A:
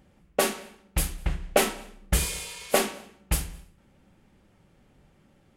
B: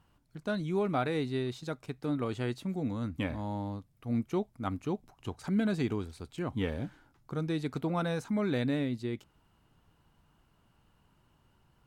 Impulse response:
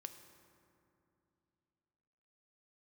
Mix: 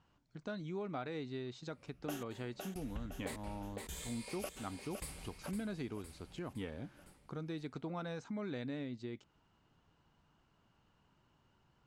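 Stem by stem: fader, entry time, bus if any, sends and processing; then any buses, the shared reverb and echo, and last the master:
−4.0 dB, 1.70 s, no send, echo send −6.5 dB, rippled gain that drifts along the octave scale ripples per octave 0.97, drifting +1.2 Hz, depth 10 dB; downward compressor 2 to 1, threshold −38 dBFS, peak gain reduction 13 dB; gate pattern "xxxxxxx.xxxx..x" 199 BPM −60 dB
−3.0 dB, 0.00 s, no send, no echo send, Butterworth low-pass 7,400 Hz; low-shelf EQ 89 Hz −7 dB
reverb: not used
echo: repeating echo 510 ms, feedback 48%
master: downward compressor 2 to 1, threshold −44 dBFS, peak gain reduction 9 dB

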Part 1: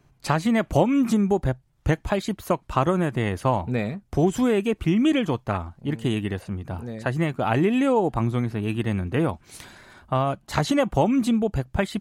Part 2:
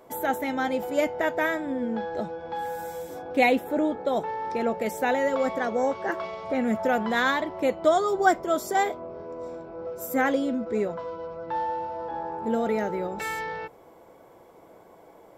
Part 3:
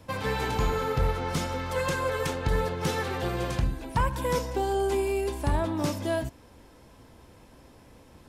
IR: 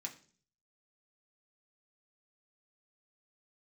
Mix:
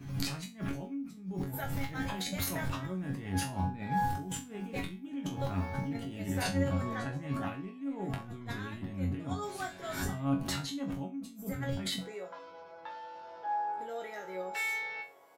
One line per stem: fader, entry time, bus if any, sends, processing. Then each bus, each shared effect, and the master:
−1.5 dB, 0.00 s, send −12 dB, graphic EQ with 10 bands 125 Hz +5 dB, 250 Hz +9 dB, 500 Hz −7 dB, 1,000 Hz −3 dB, 8,000 Hz −4 dB; background raised ahead of every attack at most 85 dB per second
+3.0 dB, 1.35 s, no send, downward compressor, threshold −28 dBFS, peak gain reduction 13.5 dB; high-pass filter 1,100 Hz 6 dB per octave
−19.5 dB, 0.00 s, no send, samples sorted by size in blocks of 8 samples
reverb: on, RT60 0.45 s, pre-delay 3 ms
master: compressor whose output falls as the input rises −26 dBFS, ratio −1; resonators tuned to a chord F#2 fifth, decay 0.27 s

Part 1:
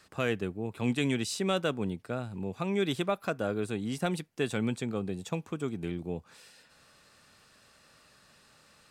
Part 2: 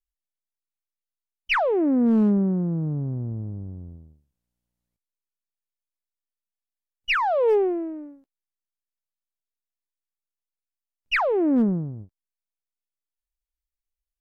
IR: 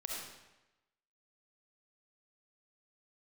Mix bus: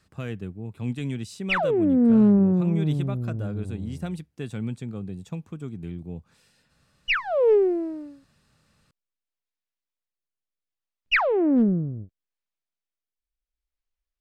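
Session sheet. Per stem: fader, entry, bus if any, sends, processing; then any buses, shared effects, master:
−8.0 dB, 0.00 s, no send, bass and treble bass +13 dB, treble 0 dB
+3.0 dB, 0.00 s, no send, low-pass filter 4,700 Hz; rotating-speaker cabinet horn 0.7 Hz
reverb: not used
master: no processing

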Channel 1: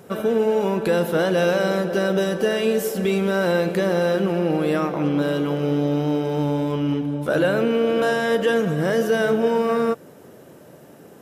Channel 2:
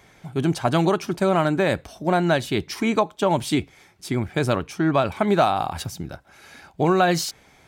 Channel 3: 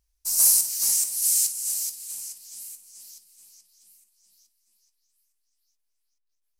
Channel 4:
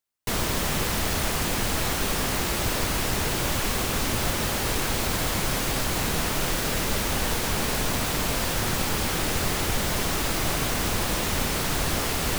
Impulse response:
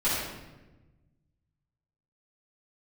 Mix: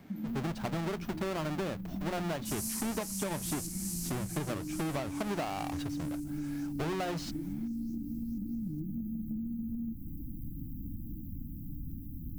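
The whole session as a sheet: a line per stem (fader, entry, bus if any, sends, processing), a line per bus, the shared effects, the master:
+0.5 dB, 0.00 s, bus A, no send, high-pass filter 230 Hz 12 dB per octave
−10.0 dB, 0.00 s, no bus, no send, each half-wave held at its own peak; mains-hum notches 60/120/180 Hz
−8.5 dB, 2.20 s, no bus, no send, compressor on every frequency bin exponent 0.6
−10.5 dB, 0.00 s, bus A, no send, no processing
bus A: 0.0 dB, linear-phase brick-wall band-stop 320–13,000 Hz; downward compressor, threshold −33 dBFS, peak gain reduction 12 dB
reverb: not used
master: high-shelf EQ 5,100 Hz −9 dB; downward compressor, threshold −32 dBFS, peak gain reduction 12 dB

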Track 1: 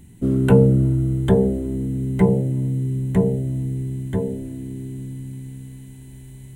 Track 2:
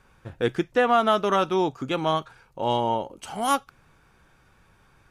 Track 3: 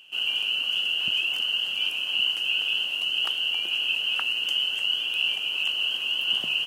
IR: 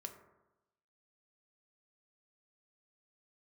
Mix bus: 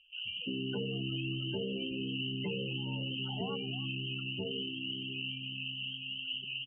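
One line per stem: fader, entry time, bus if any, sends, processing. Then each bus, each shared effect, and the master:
−7.5 dB, 0.25 s, bus A, send −6.5 dB, no echo send, high-pass filter 170 Hz 12 dB per octave; downward compressor 2.5 to 1, threshold −22 dBFS, peak gain reduction 8.5 dB; flanger 0.32 Hz, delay 2.9 ms, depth 6.4 ms, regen −79%
0:02.52 −19 dB → 0:03.13 −6 dB, 0.00 s, no bus, send −8 dB, echo send −7 dB, downward compressor 8 to 1, threshold −24 dBFS, peak gain reduction 9.5 dB; brickwall limiter −25.5 dBFS, peak gain reduction 9.5 dB; tuned comb filter 260 Hz, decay 0.29 s, harmonics all, mix 50%
−16.0 dB, 0.00 s, bus A, send −5 dB, no echo send, Butterworth low-pass 8,000 Hz 36 dB per octave
bus A: 0.0 dB, brickwall limiter −30.5 dBFS, peak gain reduction 9 dB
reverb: on, RT60 1.0 s, pre-delay 3 ms
echo: repeating echo 313 ms, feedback 26%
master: spectral peaks only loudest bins 32

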